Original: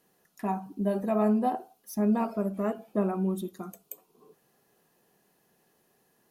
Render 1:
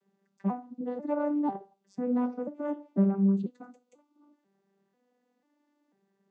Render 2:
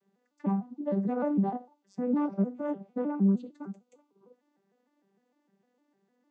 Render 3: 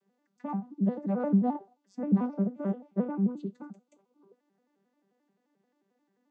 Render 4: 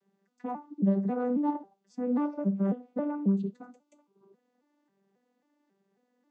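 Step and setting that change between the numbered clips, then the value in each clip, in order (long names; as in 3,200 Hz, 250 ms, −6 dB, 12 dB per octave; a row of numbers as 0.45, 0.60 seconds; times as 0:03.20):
vocoder with an arpeggio as carrier, a note every: 493, 152, 88, 271 milliseconds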